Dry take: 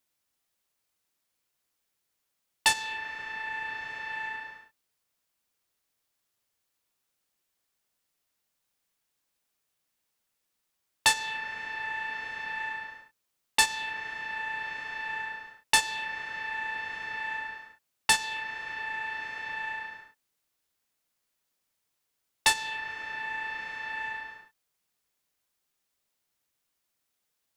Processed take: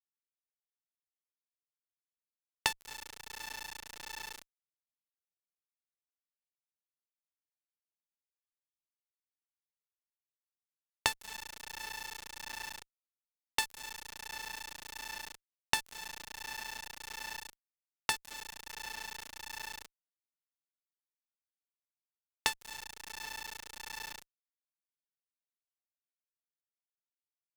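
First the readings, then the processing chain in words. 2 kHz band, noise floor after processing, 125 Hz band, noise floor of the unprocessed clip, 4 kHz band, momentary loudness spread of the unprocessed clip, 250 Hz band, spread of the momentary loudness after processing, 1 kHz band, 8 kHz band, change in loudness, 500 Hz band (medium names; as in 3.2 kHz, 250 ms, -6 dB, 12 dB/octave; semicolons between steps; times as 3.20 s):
-11.5 dB, under -85 dBFS, -3.5 dB, -81 dBFS, -7.0 dB, 12 LU, -5.5 dB, 11 LU, -10.0 dB, -8.0 dB, -9.0 dB, -5.0 dB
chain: high-pass 46 Hz 24 dB/octave; echo from a far wall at 130 m, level -29 dB; compression 2:1, threshold -37 dBFS, peak gain reduction 11.5 dB; small samples zeroed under -32.5 dBFS; Chebyshev shaper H 3 -9 dB, 5 -22 dB, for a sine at -14 dBFS; trim +8.5 dB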